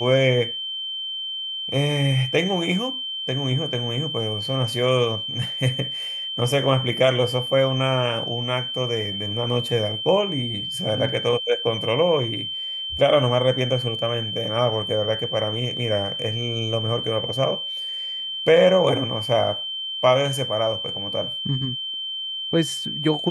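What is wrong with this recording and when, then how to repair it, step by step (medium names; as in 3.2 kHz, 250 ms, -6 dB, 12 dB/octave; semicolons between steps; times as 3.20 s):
whine 3.1 kHz -27 dBFS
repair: band-stop 3.1 kHz, Q 30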